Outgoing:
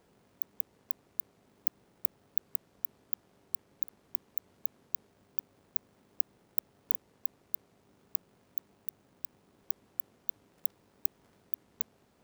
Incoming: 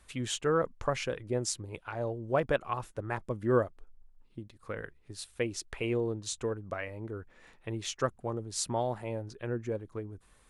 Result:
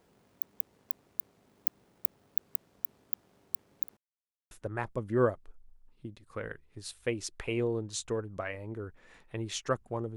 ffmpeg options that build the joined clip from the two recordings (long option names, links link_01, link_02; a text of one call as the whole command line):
ffmpeg -i cue0.wav -i cue1.wav -filter_complex "[0:a]apad=whole_dur=10.16,atrim=end=10.16,asplit=2[link_01][link_02];[link_01]atrim=end=3.97,asetpts=PTS-STARTPTS,afade=type=out:start_time=3.966:duration=0.004:curve=hsin[link_03];[link_02]atrim=start=3.97:end=4.51,asetpts=PTS-STARTPTS,volume=0[link_04];[1:a]atrim=start=2.84:end=8.49,asetpts=PTS-STARTPTS,afade=type=in:duration=0.004:curve=hsin[link_05];[link_03][link_04][link_05]concat=n=3:v=0:a=1" out.wav